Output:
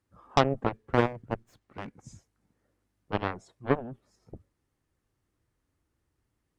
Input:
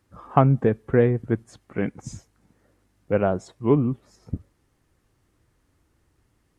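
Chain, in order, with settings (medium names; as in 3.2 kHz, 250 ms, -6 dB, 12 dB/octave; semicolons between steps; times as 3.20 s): Chebyshev shaper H 7 -14 dB, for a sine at -2 dBFS; 0.75–1.93 s: sliding maximum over 3 samples; trim -3.5 dB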